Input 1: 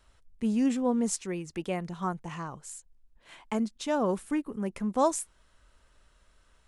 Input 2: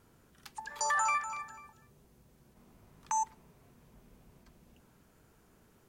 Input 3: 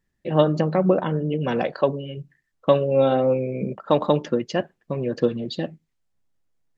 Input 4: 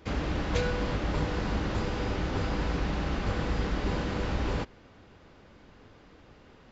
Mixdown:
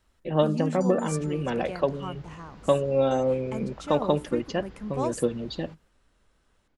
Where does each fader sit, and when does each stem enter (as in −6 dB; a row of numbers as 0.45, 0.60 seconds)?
−5.5, −14.0, −4.5, −19.0 decibels; 0.00, 0.00, 0.00, 1.10 seconds